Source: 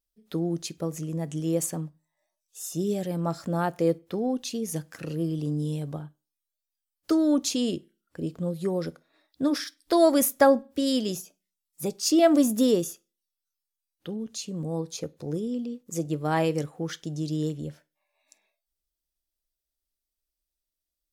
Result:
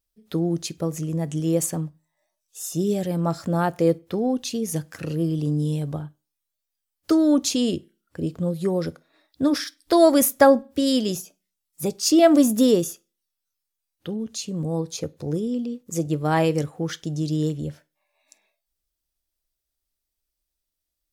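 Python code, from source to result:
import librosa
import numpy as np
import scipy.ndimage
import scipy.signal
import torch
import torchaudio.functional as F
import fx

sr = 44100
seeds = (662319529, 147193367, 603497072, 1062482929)

y = fx.peak_eq(x, sr, hz=93.0, db=8.5, octaves=0.67)
y = F.gain(torch.from_numpy(y), 4.0).numpy()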